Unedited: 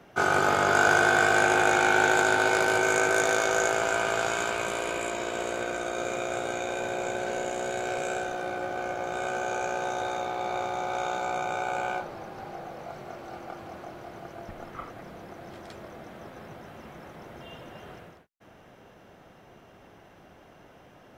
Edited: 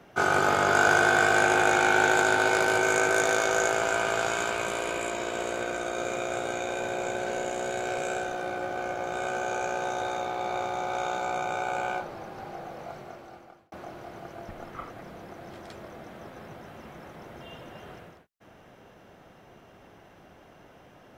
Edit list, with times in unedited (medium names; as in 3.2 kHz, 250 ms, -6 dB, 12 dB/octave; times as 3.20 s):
12.89–13.72 s: fade out